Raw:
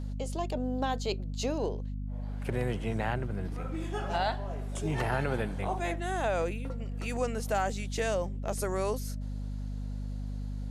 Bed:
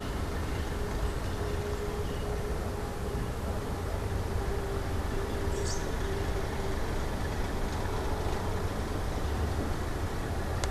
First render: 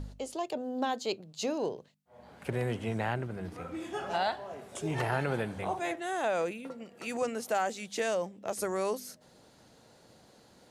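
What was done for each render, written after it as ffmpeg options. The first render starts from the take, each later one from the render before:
-af "bandreject=f=50:t=h:w=4,bandreject=f=100:t=h:w=4,bandreject=f=150:t=h:w=4,bandreject=f=200:t=h:w=4,bandreject=f=250:t=h:w=4"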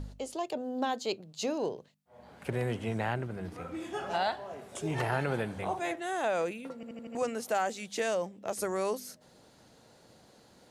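-filter_complex "[0:a]asplit=6[a][b][c][d][e][f];[a]atrim=end=6.832[g];[b]atrim=start=6.748:end=6.832[h];[c]atrim=start=6.748:end=6.832[i];[d]atrim=start=6.748:end=6.832[j];[e]atrim=start=6.748:end=6.832[k];[f]atrim=start=7.148[l];[g][h]acrossfade=d=0.004:c1=hsin:c2=hsin[m];[m][i]acrossfade=d=0.004:c1=hsin:c2=hsin[n];[n][j]acrossfade=d=0.004:c1=hsin:c2=hsin[o];[o][k]acrossfade=d=0.004:c1=hsin:c2=hsin[p];[p][l]acrossfade=d=0.004:c1=hsin:c2=hsin"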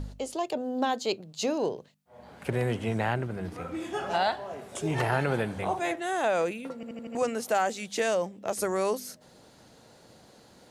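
-af "volume=4dB"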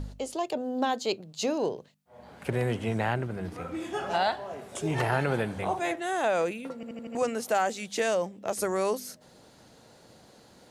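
-af anull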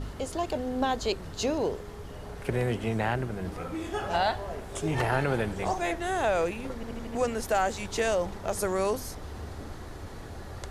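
-filter_complex "[1:a]volume=-8.5dB[a];[0:a][a]amix=inputs=2:normalize=0"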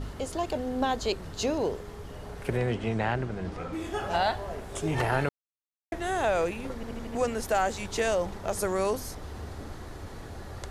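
-filter_complex "[0:a]asettb=1/sr,asplit=3[a][b][c];[a]atrim=end=2.574[d];[b]atrim=start=2.57:end=3.73,asetpts=PTS-STARTPTS,afade=t=in:d=0.004:c=qsin,afade=t=out:st=1.156:d=0.004:c=qsin,lowpass=6.5k[e];[c]atrim=start=3.726[f];[d][e]acrossfade=d=0.004:c1=hsin:c2=qsin[g];[g][f]acrossfade=d=0.004:c1=qsin:c2=hsin,asplit=3[h][i][j];[h]atrim=end=5.29,asetpts=PTS-STARTPTS,afade=t=out:st=5.286:d=0.004:c=hsin[k];[i]atrim=start=5.29:end=5.92,asetpts=PTS-STARTPTS,volume=0[l];[j]atrim=start=5.92,asetpts=PTS-STARTPTS,afade=t=in:d=0.004:c=hsin[m];[k][l][m]concat=n=3:v=0:a=1"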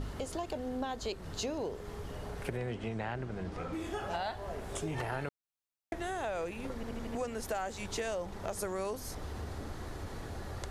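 -af "acompressor=threshold=-36dB:ratio=3"

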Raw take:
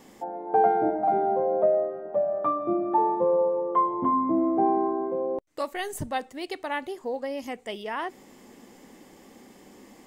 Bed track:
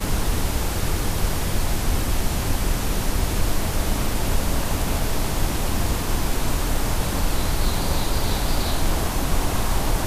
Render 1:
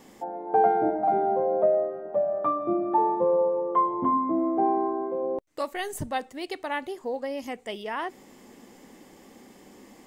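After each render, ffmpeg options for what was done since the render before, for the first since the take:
-filter_complex "[0:a]asettb=1/sr,asplit=3[a][b][c];[a]atrim=end=4.174[d];[b]atrim=start=4.17:end=5.23,asetpts=PTS-STARTPTS,afade=t=in:d=0.004:c=qsin,afade=t=out:st=1.056:d=0.004:c=qsin,highpass=f=230:p=1[e];[c]atrim=start=5.226[f];[d][e]acrossfade=d=0.004:c1=hsin:c2=qsin[g];[g][f]acrossfade=d=0.004:c1=qsin:c2=hsin"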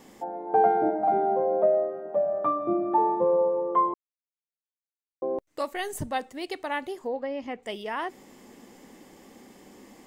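-filter_complex "[0:a]asettb=1/sr,asplit=3[a][b][c];[a]atrim=end=0.784[d];[b]atrim=start=0.78:end=2.26,asetpts=PTS-STARTPTS,afade=t=in:d=0.004:c=qsin,afade=t=out:st=1.476:d=0.004:c=qsin,highpass=130[e];[c]atrim=start=2.256[f];[d][e]acrossfade=d=0.004:c1=hsin:c2=qsin[g];[g][f]acrossfade=d=0.004:c1=qsin:c2=hsin,asettb=1/sr,asplit=3[h][i][j];[h]atrim=end=7.074[k];[i]atrim=start=7.07:end=7.63,asetpts=PTS-STARTPTS,afade=t=in:d=0.004:c=qsin,afade=t=out:st=0.556:d=0.004:c=qsin,lowpass=3k[l];[j]atrim=start=7.626[m];[k][l]acrossfade=d=0.004:c1=hsin:c2=qsin[n];[n][m]acrossfade=d=0.004:c1=qsin:c2=hsin,asplit=3[o][p][q];[o]atrim=end=3.94,asetpts=PTS-STARTPTS,afade=t=out:st=3.936:d=0.004:c=hsin[r];[p]atrim=start=3.94:end=5.22,asetpts=PTS-STARTPTS,volume=0[s];[q]atrim=start=5.22,asetpts=PTS-STARTPTS,afade=t=in:d=0.004:c=hsin[t];[r][s][t]concat=n=3:v=0:a=1"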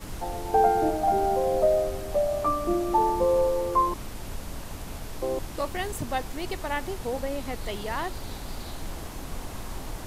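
-filter_complex "[1:a]volume=-14.5dB[a];[0:a][a]amix=inputs=2:normalize=0"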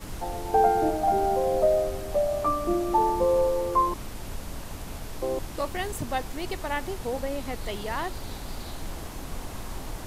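-af anull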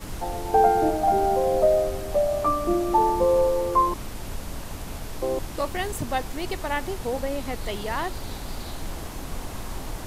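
-af "volume=2.5dB"

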